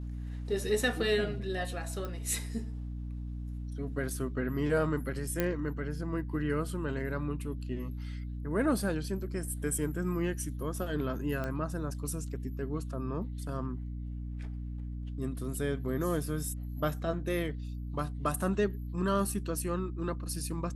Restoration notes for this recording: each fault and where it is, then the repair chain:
hum 60 Hz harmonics 5 -38 dBFS
2.05 s: pop -25 dBFS
5.40 s: pop -14 dBFS
11.44 s: pop -23 dBFS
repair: de-click; de-hum 60 Hz, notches 5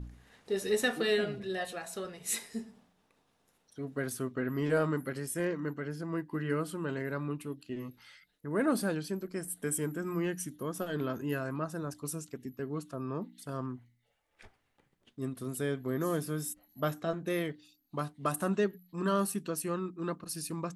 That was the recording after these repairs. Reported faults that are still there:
2.05 s: pop

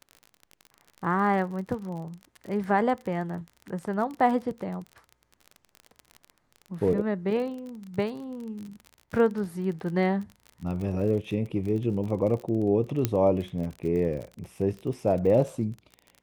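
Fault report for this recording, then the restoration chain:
crackle 35 per s -34 dBFS
13.05 s: pop -9 dBFS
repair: de-click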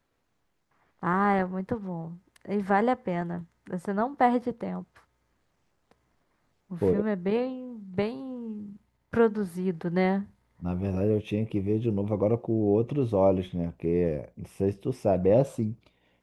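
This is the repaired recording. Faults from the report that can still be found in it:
nothing left

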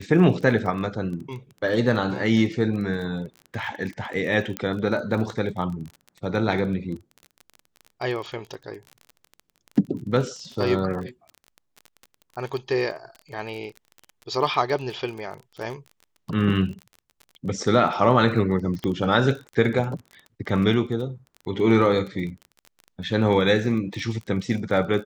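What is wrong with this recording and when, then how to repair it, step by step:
crackle 26 per s -32 dBFS
4.57 s: pop -11 dBFS
18.84 s: pop -16 dBFS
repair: de-click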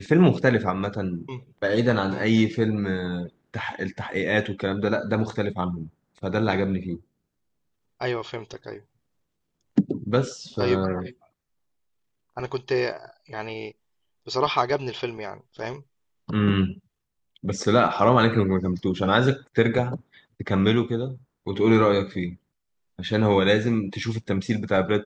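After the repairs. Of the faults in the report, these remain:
4.57 s: pop

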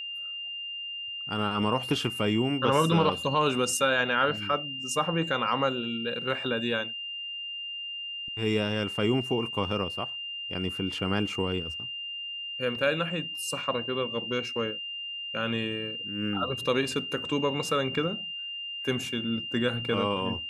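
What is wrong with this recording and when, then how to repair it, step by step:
whine 2.8 kHz -34 dBFS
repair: band-stop 2.8 kHz, Q 30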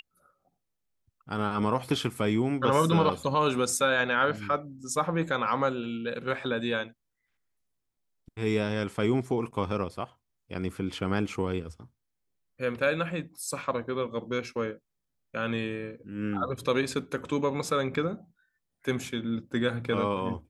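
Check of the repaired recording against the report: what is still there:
nothing left

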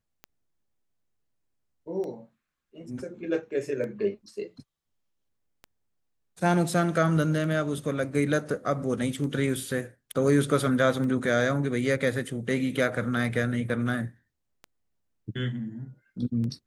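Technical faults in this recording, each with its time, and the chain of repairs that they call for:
tick 33 1/3 rpm -26 dBFS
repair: de-click

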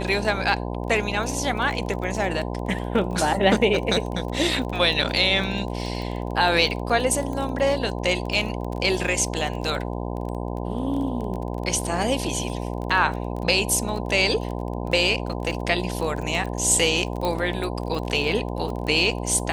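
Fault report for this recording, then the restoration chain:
buzz 60 Hz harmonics 17 -29 dBFS
crackle 21 per s -29 dBFS
17.25 s: pop -13 dBFS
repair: de-click; de-hum 60 Hz, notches 17

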